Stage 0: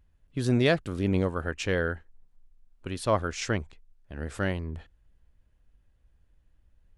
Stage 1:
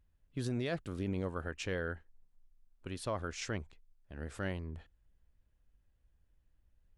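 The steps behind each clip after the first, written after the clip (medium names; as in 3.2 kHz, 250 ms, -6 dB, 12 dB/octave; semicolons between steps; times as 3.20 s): peak limiter -18.5 dBFS, peak gain reduction 8 dB; trim -7.5 dB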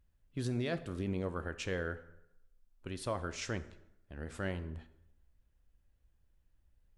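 plate-style reverb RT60 0.83 s, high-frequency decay 0.75×, DRR 11.5 dB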